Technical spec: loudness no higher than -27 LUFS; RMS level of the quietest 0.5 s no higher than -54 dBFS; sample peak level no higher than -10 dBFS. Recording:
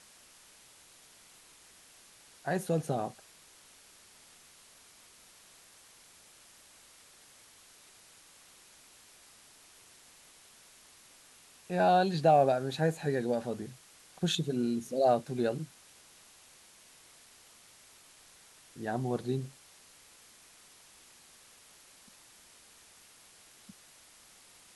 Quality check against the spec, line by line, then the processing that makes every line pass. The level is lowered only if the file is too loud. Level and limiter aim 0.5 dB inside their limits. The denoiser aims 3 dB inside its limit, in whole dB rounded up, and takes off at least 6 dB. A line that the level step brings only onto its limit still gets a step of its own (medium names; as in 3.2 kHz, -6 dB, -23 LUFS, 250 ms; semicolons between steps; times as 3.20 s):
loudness -30.5 LUFS: pass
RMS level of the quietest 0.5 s -58 dBFS: pass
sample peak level -13.5 dBFS: pass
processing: none needed